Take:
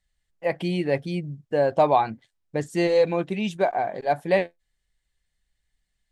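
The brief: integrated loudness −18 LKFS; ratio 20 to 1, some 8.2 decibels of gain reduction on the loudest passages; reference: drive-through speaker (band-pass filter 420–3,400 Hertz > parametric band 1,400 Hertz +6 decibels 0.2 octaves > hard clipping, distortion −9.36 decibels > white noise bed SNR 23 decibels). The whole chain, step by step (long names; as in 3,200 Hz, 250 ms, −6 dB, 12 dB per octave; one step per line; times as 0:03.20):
downward compressor 20 to 1, threshold −22 dBFS
band-pass filter 420–3,400 Hz
parametric band 1,400 Hz +6 dB 0.2 octaves
hard clipping −27.5 dBFS
white noise bed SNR 23 dB
level +16.5 dB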